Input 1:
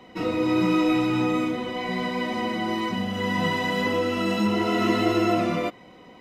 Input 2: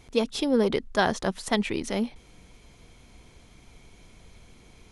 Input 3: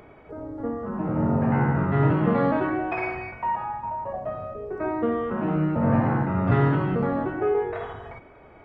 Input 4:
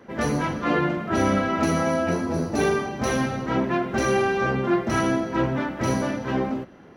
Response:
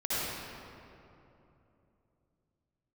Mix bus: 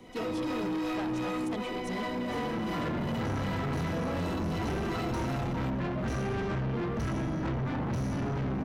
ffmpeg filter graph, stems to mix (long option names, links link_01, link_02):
-filter_complex "[0:a]highshelf=frequency=8700:gain=9,acrossover=split=480[link_01][link_02];[link_01]aeval=exprs='val(0)*(1-0.7/2+0.7/2*cos(2*PI*2.7*n/s))':channel_layout=same[link_03];[link_02]aeval=exprs='val(0)*(1-0.7/2-0.7/2*cos(2*PI*2.7*n/s))':channel_layout=same[link_04];[link_03][link_04]amix=inputs=2:normalize=0,volume=1dB[link_05];[1:a]volume=-8dB,asplit=2[link_06][link_07];[2:a]lowpass=frequency=1200:width=0.5412,lowpass=frequency=1200:width=1.3066,adelay=1700,volume=-2dB[link_08];[3:a]asubboost=boost=7.5:cutoff=190,adelay=2100,volume=-2dB[link_09];[link_07]apad=whole_len=399743[link_10];[link_09][link_10]sidechaincompress=threshold=-46dB:ratio=8:attack=16:release=872[link_11];[link_05][link_06][link_08][link_11]amix=inputs=4:normalize=0,acrossover=split=100|1500[link_12][link_13][link_14];[link_12]acompressor=threshold=-29dB:ratio=4[link_15];[link_13]acompressor=threshold=-23dB:ratio=4[link_16];[link_14]acompressor=threshold=-40dB:ratio=4[link_17];[link_15][link_16][link_17]amix=inputs=3:normalize=0,asoftclip=type=tanh:threshold=-29dB"